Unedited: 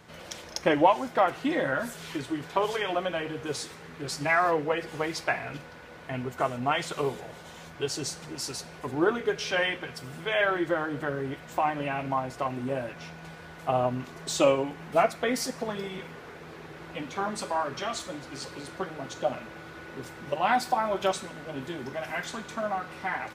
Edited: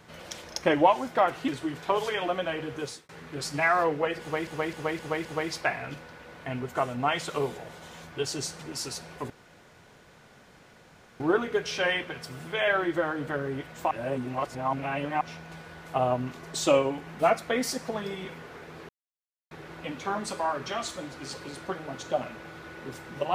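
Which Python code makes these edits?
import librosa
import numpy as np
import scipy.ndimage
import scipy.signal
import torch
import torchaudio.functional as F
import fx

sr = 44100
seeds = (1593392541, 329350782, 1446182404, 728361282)

y = fx.edit(x, sr, fx.cut(start_s=1.48, length_s=0.67),
    fx.fade_out_span(start_s=3.44, length_s=0.32),
    fx.repeat(start_s=4.88, length_s=0.26, count=5),
    fx.insert_room_tone(at_s=8.93, length_s=1.9),
    fx.reverse_span(start_s=11.64, length_s=1.3),
    fx.insert_silence(at_s=16.62, length_s=0.62), tone=tone)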